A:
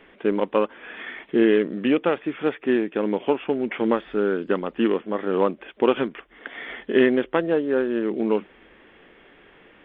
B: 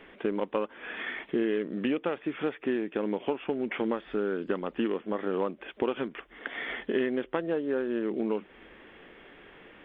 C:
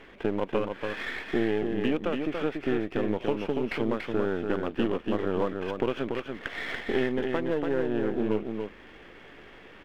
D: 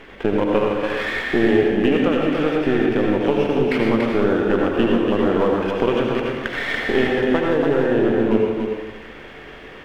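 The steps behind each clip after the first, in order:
downward compressor 3 to 1, threshold −28 dBFS, peak gain reduction 12 dB
gain on one half-wave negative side −7 dB; single-tap delay 286 ms −5 dB; mains hum 50 Hz, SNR 35 dB; level +3.5 dB
convolution reverb RT60 0.95 s, pre-delay 67 ms, DRR 0 dB; level +7.5 dB

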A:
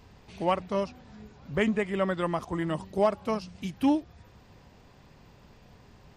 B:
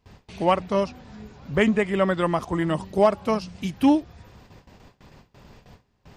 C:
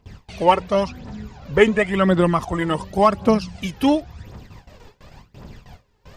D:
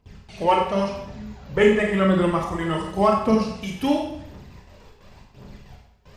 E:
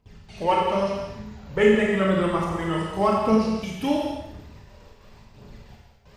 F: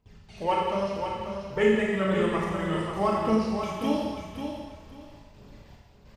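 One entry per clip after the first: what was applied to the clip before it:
noise gate with hold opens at −44 dBFS; level +6 dB
phase shifter 0.92 Hz, delay 2.4 ms, feedback 57%; level +3.5 dB
convolution reverb RT60 0.70 s, pre-delay 24 ms, DRR 0 dB; level −5.5 dB
reverb whose tail is shaped and stops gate 250 ms flat, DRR 3 dB; level −3 dB
repeating echo 540 ms, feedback 23%, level −7 dB; level −4.5 dB

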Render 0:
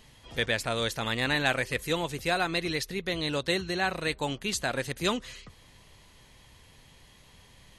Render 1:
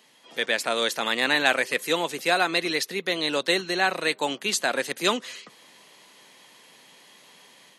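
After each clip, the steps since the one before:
Bessel high-pass filter 310 Hz, order 8
automatic gain control gain up to 6 dB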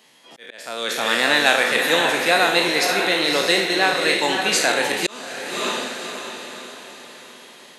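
peak hold with a decay on every bin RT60 0.60 s
feedback delay with all-pass diffusion 574 ms, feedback 44%, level −4.5 dB
volume swells 606 ms
level +2.5 dB

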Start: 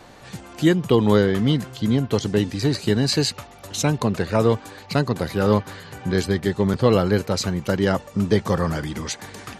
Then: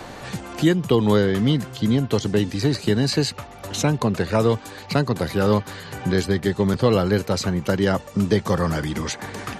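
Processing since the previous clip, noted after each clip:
multiband upward and downward compressor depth 40%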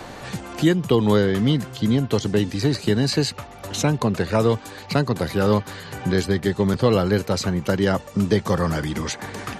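no processing that can be heard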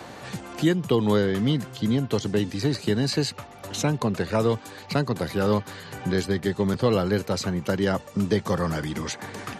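high-pass filter 81 Hz
level −3.5 dB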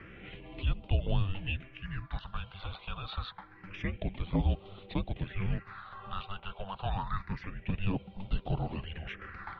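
all-pass phaser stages 6, 0.27 Hz, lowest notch 580–2,100 Hz
single-sideband voice off tune −390 Hz 370–3,400 Hz
level −2 dB

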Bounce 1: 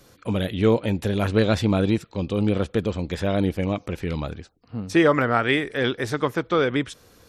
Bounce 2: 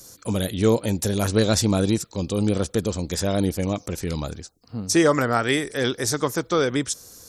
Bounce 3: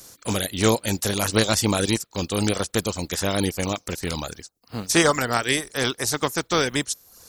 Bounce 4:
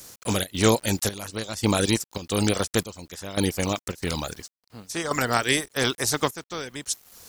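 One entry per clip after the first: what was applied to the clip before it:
high shelf with overshoot 4,200 Hz +14 dB, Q 1.5
compressing power law on the bin magnitudes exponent 0.62; reverb reduction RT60 0.63 s
bit-depth reduction 8 bits, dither none; gate pattern "xxxx.xxxxx.....x" 138 BPM −12 dB

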